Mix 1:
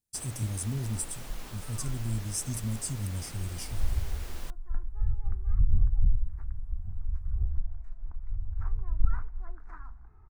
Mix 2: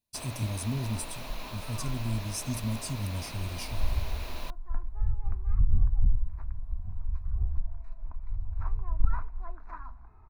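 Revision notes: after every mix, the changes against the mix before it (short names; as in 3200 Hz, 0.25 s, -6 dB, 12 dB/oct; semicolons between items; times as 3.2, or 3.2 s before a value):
master: add thirty-one-band EQ 250 Hz +5 dB, 630 Hz +10 dB, 1000 Hz +10 dB, 2500 Hz +9 dB, 4000 Hz +9 dB, 8000 Hz -9 dB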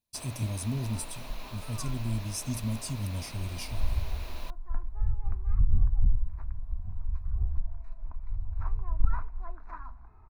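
first sound -3.5 dB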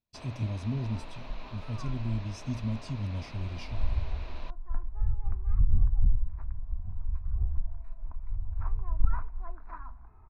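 master: add air absorption 190 m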